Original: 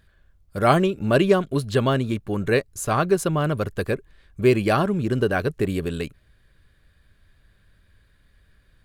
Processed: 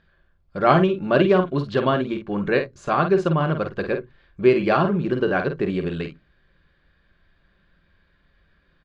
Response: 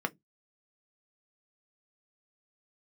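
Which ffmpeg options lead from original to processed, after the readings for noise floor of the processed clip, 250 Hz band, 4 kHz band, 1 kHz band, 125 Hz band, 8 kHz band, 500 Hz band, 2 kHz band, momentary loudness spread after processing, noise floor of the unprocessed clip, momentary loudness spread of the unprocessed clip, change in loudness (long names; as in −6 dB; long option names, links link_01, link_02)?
−64 dBFS, +1.0 dB, −1.5 dB, +2.0 dB, −1.5 dB, below −15 dB, +1.5 dB, +1.0 dB, 10 LU, −61 dBFS, 9 LU, +1.0 dB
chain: -filter_complex "[0:a]lowpass=frequency=4700:width=0.5412,lowpass=frequency=4700:width=1.3066,asplit=2[link_01][link_02];[link_02]adelay=49,volume=-7.5dB[link_03];[link_01][link_03]amix=inputs=2:normalize=0,asplit=2[link_04][link_05];[1:a]atrim=start_sample=2205,asetrate=34839,aresample=44100[link_06];[link_05][link_06]afir=irnorm=-1:irlink=0,volume=-10dB[link_07];[link_04][link_07]amix=inputs=2:normalize=0,volume=-3.5dB"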